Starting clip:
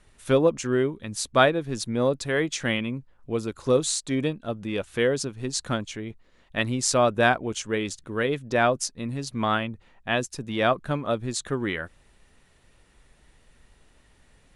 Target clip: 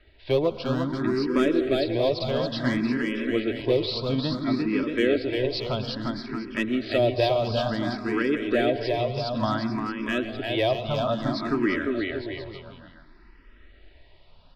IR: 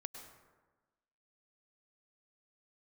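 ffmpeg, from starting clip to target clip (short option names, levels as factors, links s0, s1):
-filter_complex "[0:a]aecho=1:1:3.1:0.43,acrossover=split=540|3100[s0][s1][s2];[s1]acompressor=threshold=0.0282:ratio=6[s3];[s2]asoftclip=type=tanh:threshold=0.0562[s4];[s0][s3][s4]amix=inputs=3:normalize=0,aresample=11025,aresample=44100,asoftclip=type=hard:threshold=0.15,aecho=1:1:350|630|854|1033|1177:0.631|0.398|0.251|0.158|0.1,asplit=2[s5][s6];[1:a]atrim=start_sample=2205,asetrate=40572,aresample=44100[s7];[s6][s7]afir=irnorm=-1:irlink=0,volume=0.841[s8];[s5][s8]amix=inputs=2:normalize=0,asplit=2[s9][s10];[s10]afreqshift=0.58[s11];[s9][s11]amix=inputs=2:normalize=1"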